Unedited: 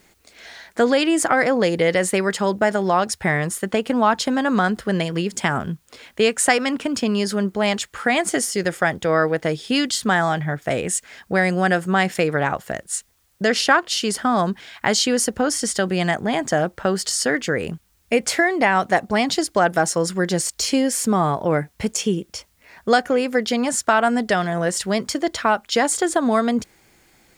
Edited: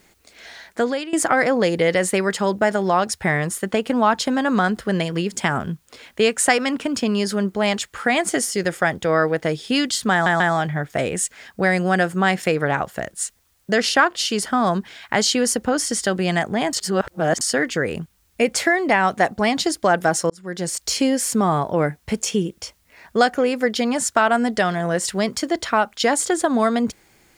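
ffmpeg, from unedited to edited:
-filter_complex "[0:a]asplit=7[a][b][c][d][e][f][g];[a]atrim=end=1.13,asetpts=PTS-STARTPTS,afade=t=out:st=0.66:d=0.47:silence=0.125893[h];[b]atrim=start=1.13:end=10.262,asetpts=PTS-STARTPTS,afade=t=in:d=0.004:c=hsin:silence=0.125893[i];[c]atrim=start=10.118:end=10.262[j];[d]atrim=start=10.118:end=16.452[k];[e]atrim=start=16.448:end=17.132,asetpts=PTS-STARTPTS,areverse[l];[f]atrim=start=17.128:end=20.02,asetpts=PTS-STARTPTS,afade=t=out:st=2.888:d=0.004:c=hsin[m];[g]atrim=start=20.02,asetpts=PTS-STARTPTS,afade=t=in:d=0.56[n];[h][i]concat=n=2:v=0:a=1[o];[o][j]acrossfade=d=0.004:c1=hsin:c2=hsin[p];[p][k]acrossfade=d=0.004:c1=hsin:c2=hsin[q];[q][l]acrossfade=d=0.004:c1=hsin:c2=hsin[r];[m][n]concat=n=2:v=0:a=1[s];[r][s]acrossfade=d=0.004:c1=hsin:c2=hsin"

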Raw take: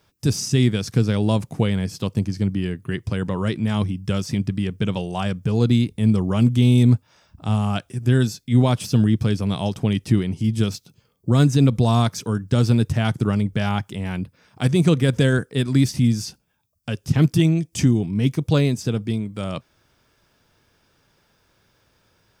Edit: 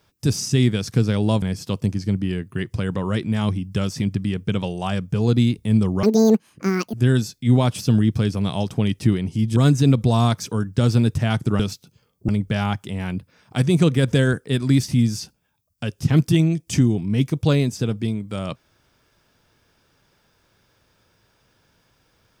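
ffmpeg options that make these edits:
-filter_complex "[0:a]asplit=7[a][b][c][d][e][f][g];[a]atrim=end=1.422[h];[b]atrim=start=1.748:end=6.364[i];[c]atrim=start=6.36:end=7.99,asetpts=PTS-STARTPTS,asetrate=79380,aresample=44100[j];[d]atrim=start=7.986:end=10.622[k];[e]atrim=start=11.308:end=13.342[l];[f]atrim=start=10.618:end=11.312[m];[g]atrim=start=13.338[n];[h][i]acrossfade=d=0.004:c1=hsin:c2=hsin[o];[o][j]acrossfade=d=0.004:c1=hsin:c2=hsin[p];[p][k]acrossfade=d=0.004:c1=hsin:c2=hsin[q];[q][l]acrossfade=d=0.004:c1=hsin:c2=hsin[r];[r][m]acrossfade=d=0.004:c1=hsin:c2=hsin[s];[s][n]acrossfade=d=0.004:c1=hsin:c2=hsin"

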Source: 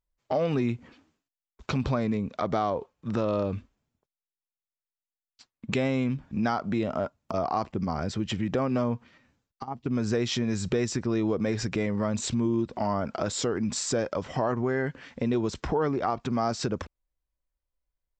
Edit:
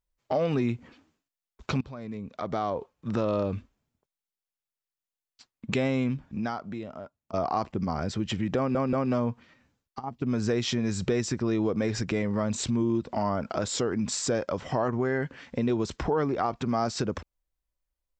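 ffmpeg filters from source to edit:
-filter_complex "[0:a]asplit=5[a][b][c][d][e];[a]atrim=end=1.81,asetpts=PTS-STARTPTS,afade=t=out:st=1.806:d=0.004:c=hsin:silence=0.0944061[f];[b]atrim=start=1.81:end=7.33,asetpts=PTS-STARTPTS,afade=t=in:d=1.14:silence=0.0944061,afade=t=out:st=4.27:d=1.25:c=qua:silence=0.199526[g];[c]atrim=start=7.33:end=8.752,asetpts=PTS-STARTPTS,afade=t=in:d=0.004:c=hsin:silence=0.199526[h];[d]atrim=start=8.568:end=8.752[i];[e]atrim=start=8.568[j];[f][g][h]concat=n=3:v=0:a=1[k];[k][i]acrossfade=d=0.004:c1=hsin:c2=hsin[l];[l][j]acrossfade=d=0.004:c1=hsin:c2=hsin"

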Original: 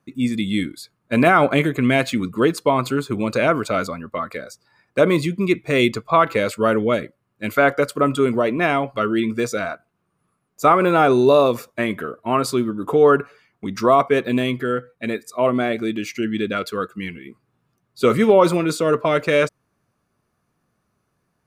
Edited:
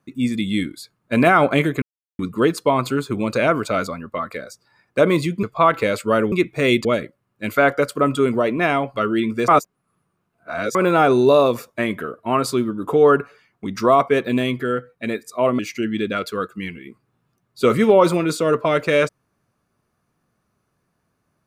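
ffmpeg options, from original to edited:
-filter_complex "[0:a]asplit=9[a][b][c][d][e][f][g][h][i];[a]atrim=end=1.82,asetpts=PTS-STARTPTS,afade=t=out:st=1.816:d=0.004:c=hsin[j];[b]atrim=start=1.82:end=2.19,asetpts=PTS-STARTPTS,volume=0[k];[c]atrim=start=2.19:end=5.432,asetpts=PTS-STARTPTS,afade=t=in:d=0.004:c=hsin[l];[d]atrim=start=5.958:end=6.852[m];[e]atrim=start=5.428:end=5.962[n];[f]atrim=start=6.848:end=9.482[o];[g]atrim=start=9.478:end=10.752,asetpts=PTS-STARTPTS,areverse[p];[h]atrim=start=10.748:end=15.592[q];[i]atrim=start=15.988[r];[j][k][l]concat=n=3:v=0:a=1[s];[s][m]acrossfade=d=0.004:c1=hsin:c2=hsin[t];[t][n]acrossfade=d=0.004:c1=hsin:c2=hsin[u];[u][o]acrossfade=d=0.004:c1=hsin:c2=hsin[v];[v][p]acrossfade=d=0.004:c1=hsin:c2=hsin[w];[w][q]acrossfade=d=0.004:c1=hsin:c2=hsin[x];[x][r]acrossfade=d=0.004:c1=hsin:c2=hsin"

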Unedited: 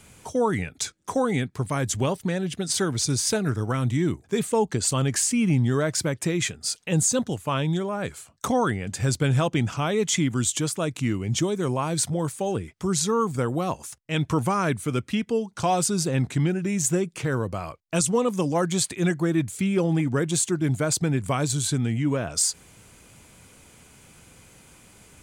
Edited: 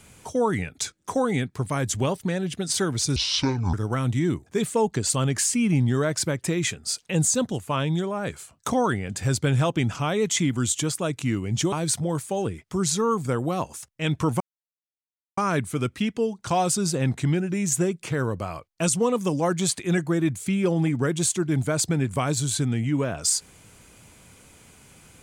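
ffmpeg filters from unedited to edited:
-filter_complex "[0:a]asplit=5[a][b][c][d][e];[a]atrim=end=3.164[f];[b]atrim=start=3.16:end=3.51,asetpts=PTS-STARTPTS,asetrate=26901,aresample=44100,atrim=end_sample=25303,asetpts=PTS-STARTPTS[g];[c]atrim=start=3.506:end=11.502[h];[d]atrim=start=11.818:end=14.5,asetpts=PTS-STARTPTS,afade=t=out:st=2.678:d=0.004:c=hsin,apad=pad_dur=0.97[i];[e]atrim=start=14.5,asetpts=PTS-STARTPTS,afade=t=in:d=0.004:c=hsin[j];[f][g]acrossfade=d=0.004:c1=hsin:c2=hsin[k];[k][h]acrossfade=d=0.004:c1=hsin:c2=hsin[l];[i][j]concat=n=2:v=0:a=1[m];[l][m]acrossfade=d=0.004:c1=hsin:c2=hsin"

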